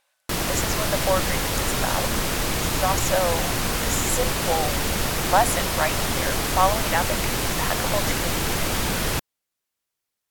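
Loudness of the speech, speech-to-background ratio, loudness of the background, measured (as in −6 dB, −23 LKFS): −27.0 LKFS, −3.0 dB, −24.0 LKFS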